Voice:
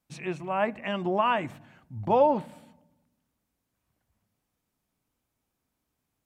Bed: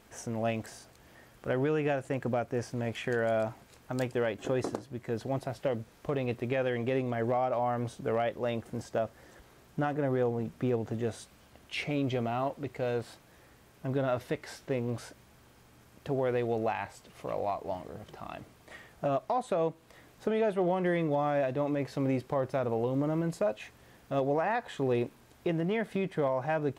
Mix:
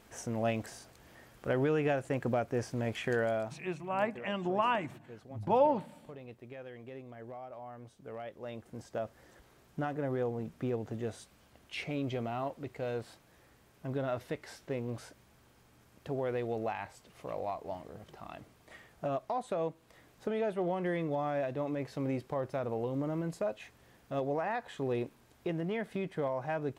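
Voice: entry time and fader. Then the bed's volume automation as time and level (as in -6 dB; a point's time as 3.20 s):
3.40 s, -5.0 dB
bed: 3.19 s -0.5 dB
3.92 s -16.5 dB
7.87 s -16.5 dB
9.13 s -4.5 dB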